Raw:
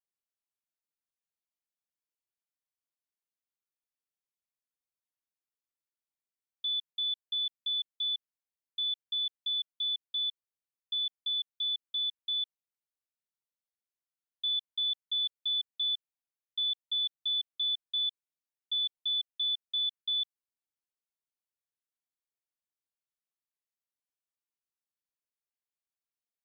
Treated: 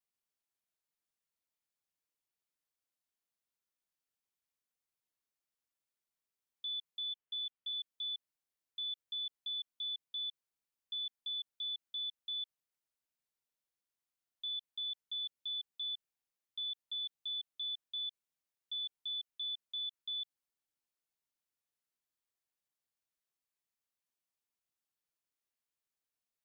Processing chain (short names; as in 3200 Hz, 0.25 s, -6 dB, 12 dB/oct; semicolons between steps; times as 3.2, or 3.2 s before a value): 7.13–7.73 elliptic low-pass 3200 Hz; limiter -36.5 dBFS, peak gain reduction 10 dB; gain +1 dB